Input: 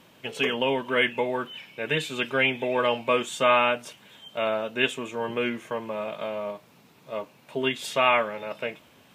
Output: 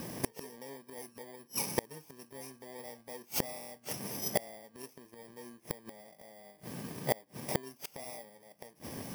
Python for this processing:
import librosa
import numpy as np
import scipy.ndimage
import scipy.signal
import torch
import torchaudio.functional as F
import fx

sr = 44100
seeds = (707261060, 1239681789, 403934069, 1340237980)

y = fx.bit_reversed(x, sr, seeds[0], block=32)
y = fx.high_shelf(y, sr, hz=2800.0, db=-7.5)
y = fx.gate_flip(y, sr, shuts_db=-30.0, range_db=-36)
y = F.gain(torch.from_numpy(y), 16.0).numpy()